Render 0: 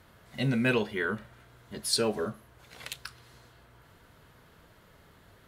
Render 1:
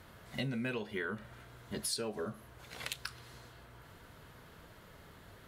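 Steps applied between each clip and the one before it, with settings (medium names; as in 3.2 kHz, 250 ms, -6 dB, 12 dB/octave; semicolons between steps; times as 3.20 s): compression 10:1, threshold -36 dBFS, peak gain reduction 14.5 dB; trim +2 dB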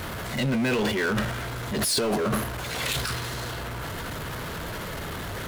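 power-law waveshaper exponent 0.5; transient shaper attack -4 dB, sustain +11 dB; trim +4 dB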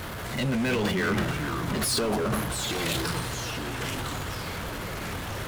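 ever faster or slower copies 212 ms, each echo -4 st, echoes 3, each echo -6 dB; trim -2 dB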